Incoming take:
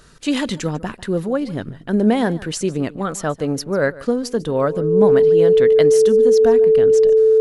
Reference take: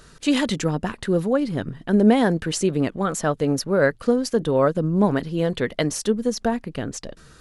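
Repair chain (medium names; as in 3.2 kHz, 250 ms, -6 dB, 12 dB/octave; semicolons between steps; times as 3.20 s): band-stop 440 Hz, Q 30; inverse comb 147 ms -19.5 dB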